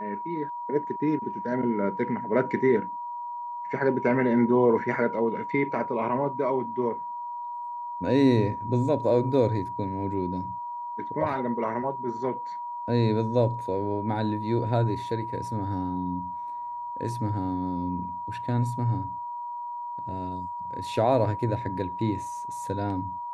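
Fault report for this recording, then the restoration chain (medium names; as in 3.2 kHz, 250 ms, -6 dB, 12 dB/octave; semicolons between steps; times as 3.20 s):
whine 960 Hz -32 dBFS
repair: band-stop 960 Hz, Q 30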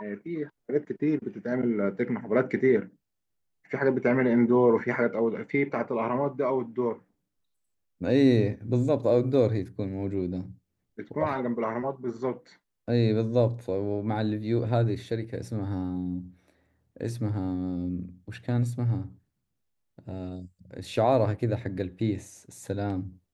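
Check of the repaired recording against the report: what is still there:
nothing left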